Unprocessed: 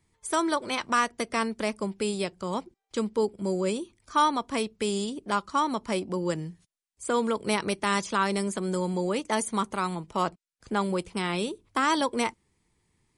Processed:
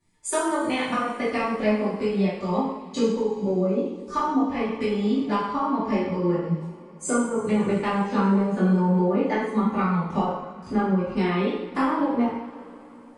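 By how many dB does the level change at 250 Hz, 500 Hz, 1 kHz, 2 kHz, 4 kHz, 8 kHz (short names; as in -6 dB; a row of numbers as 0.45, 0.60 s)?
+7.5, +4.5, +1.0, -0.5, -4.5, -0.5 dB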